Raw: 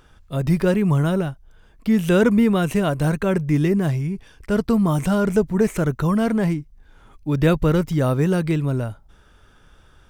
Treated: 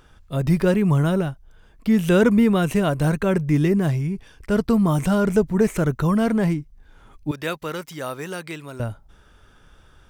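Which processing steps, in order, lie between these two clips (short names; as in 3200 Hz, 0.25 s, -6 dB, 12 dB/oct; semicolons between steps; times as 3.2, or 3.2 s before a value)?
7.31–8.8 HPF 1300 Hz 6 dB/oct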